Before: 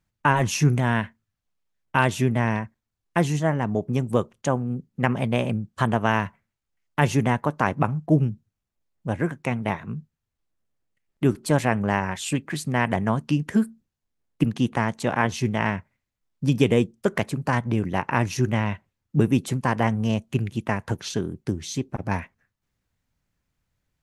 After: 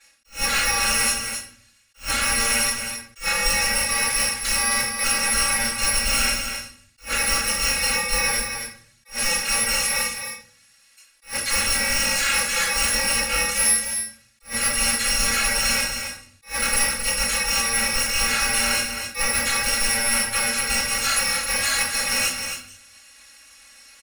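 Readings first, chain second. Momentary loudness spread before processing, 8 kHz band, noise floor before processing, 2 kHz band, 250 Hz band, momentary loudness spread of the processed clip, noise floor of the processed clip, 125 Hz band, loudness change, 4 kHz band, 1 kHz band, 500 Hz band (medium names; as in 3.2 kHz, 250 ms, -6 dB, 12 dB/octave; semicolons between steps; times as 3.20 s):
8 LU, +18.5 dB, -83 dBFS, +7.5 dB, -12.5 dB, 10 LU, -57 dBFS, -16.0 dB, +4.5 dB, +16.0 dB, -1.5 dB, -6.5 dB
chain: bit-reversed sample order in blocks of 128 samples; frequency weighting ITU-R 468; de-esser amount 65%; peaking EQ 1.7 kHz +10.5 dB 0.78 oct; comb 3.6 ms, depth 87%; reverse; compression 6:1, threshold -38 dBFS, peak gain reduction 17 dB; reverse; saturation -39 dBFS, distortion -10 dB; delay 266 ms -7.5 dB; simulated room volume 70 m³, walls mixed, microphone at 3.7 m; attacks held to a fixed rise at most 240 dB/s; trim +8 dB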